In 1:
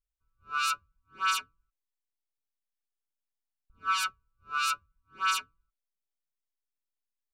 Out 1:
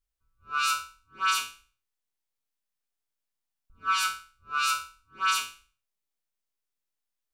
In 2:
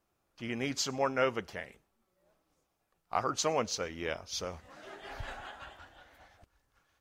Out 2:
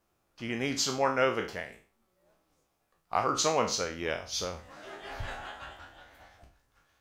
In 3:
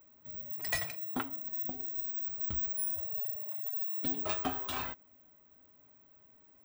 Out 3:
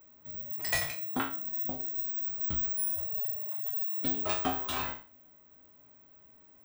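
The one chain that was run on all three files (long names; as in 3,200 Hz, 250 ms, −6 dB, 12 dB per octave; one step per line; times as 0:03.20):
peak hold with a decay on every bin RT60 0.39 s
level +2 dB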